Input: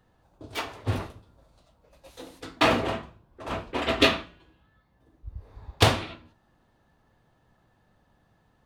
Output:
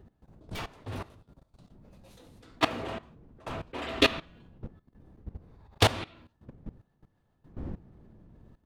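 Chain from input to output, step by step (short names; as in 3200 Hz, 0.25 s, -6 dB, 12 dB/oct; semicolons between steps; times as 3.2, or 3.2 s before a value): wind noise 190 Hz -42 dBFS; level quantiser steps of 18 dB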